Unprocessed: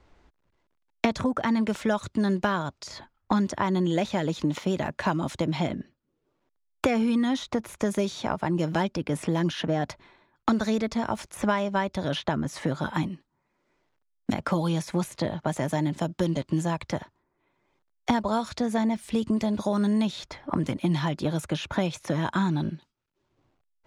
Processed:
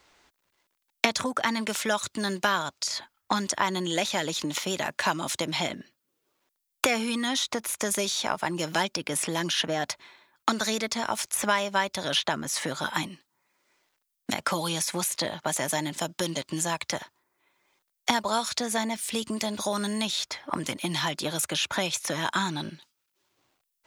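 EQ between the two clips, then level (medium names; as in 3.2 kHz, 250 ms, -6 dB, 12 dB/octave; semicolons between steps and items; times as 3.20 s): tilt EQ +4 dB/octave; +1.5 dB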